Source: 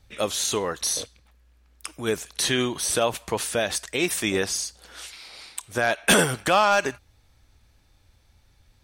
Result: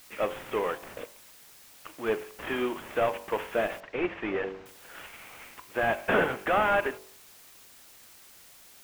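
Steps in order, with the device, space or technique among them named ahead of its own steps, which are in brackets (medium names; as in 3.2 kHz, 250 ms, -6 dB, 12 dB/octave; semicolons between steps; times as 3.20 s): army field radio (band-pass 300–3200 Hz; CVSD coder 16 kbps; white noise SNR 22 dB); de-hum 47.75 Hz, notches 23; 3.80–4.66 s: distance through air 180 m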